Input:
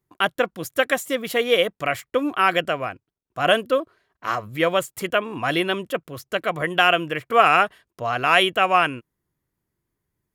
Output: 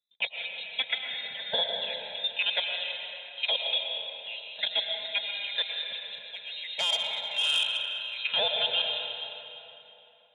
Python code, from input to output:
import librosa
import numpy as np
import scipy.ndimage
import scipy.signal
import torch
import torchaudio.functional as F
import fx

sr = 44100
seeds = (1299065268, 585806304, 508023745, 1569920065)

y = fx.env_phaser(x, sr, low_hz=170.0, high_hz=1700.0, full_db=-13.5)
y = fx.freq_invert(y, sr, carrier_hz=3900)
y = scipy.signal.sosfilt(scipy.signal.butter(4, 100.0, 'highpass', fs=sr, output='sos'), y)
y = fx.fixed_phaser(y, sr, hz=320.0, stages=6)
y = fx.notch_comb(y, sr, f0_hz=380.0)
y = fx.echo_feedback(y, sr, ms=157, feedback_pct=59, wet_db=-17.0)
y = fx.level_steps(y, sr, step_db=13)
y = fx.rev_freeverb(y, sr, rt60_s=3.3, hf_ratio=0.65, predelay_ms=75, drr_db=1.5)
y = fx.transformer_sat(y, sr, knee_hz=3200.0, at=(6.13, 8.19))